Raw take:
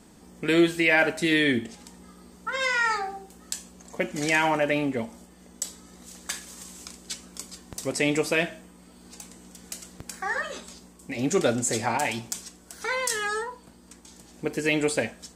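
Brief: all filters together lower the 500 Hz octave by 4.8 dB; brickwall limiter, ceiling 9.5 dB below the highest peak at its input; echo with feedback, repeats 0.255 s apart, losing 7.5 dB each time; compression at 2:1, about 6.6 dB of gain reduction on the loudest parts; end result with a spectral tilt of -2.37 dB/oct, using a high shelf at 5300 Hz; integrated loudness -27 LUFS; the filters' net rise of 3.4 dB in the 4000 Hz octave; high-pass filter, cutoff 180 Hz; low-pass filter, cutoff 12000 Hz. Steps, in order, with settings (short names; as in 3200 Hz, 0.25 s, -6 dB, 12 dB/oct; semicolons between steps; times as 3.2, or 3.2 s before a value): HPF 180 Hz; LPF 12000 Hz; bell 500 Hz -6 dB; bell 4000 Hz +7 dB; high shelf 5300 Hz -6 dB; compressor 2:1, threshold -29 dBFS; limiter -20.5 dBFS; feedback echo 0.255 s, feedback 42%, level -7.5 dB; gain +6 dB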